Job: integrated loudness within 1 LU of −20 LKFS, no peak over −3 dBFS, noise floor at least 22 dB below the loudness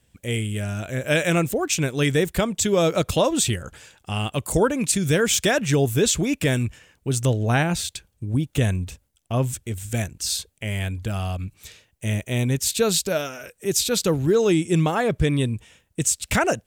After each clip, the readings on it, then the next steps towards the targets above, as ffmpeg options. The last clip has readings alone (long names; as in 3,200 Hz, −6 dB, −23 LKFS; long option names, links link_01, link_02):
integrated loudness −22.5 LKFS; sample peak −7.5 dBFS; target loudness −20.0 LKFS
→ -af "volume=2.5dB"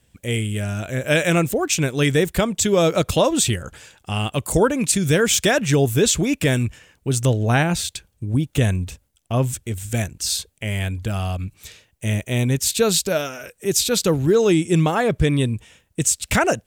integrated loudness −20.0 LKFS; sample peak −5.0 dBFS; background noise floor −65 dBFS